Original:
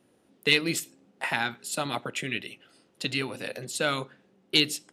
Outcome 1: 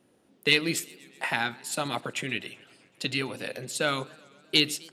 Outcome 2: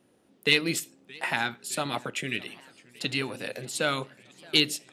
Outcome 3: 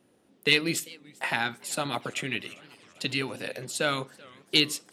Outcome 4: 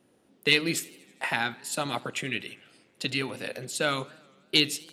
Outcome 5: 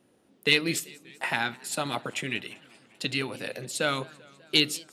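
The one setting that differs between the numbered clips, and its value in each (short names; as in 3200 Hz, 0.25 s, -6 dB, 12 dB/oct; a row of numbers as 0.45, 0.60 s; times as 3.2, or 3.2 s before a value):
warbling echo, time: 126, 620, 390, 81, 195 ms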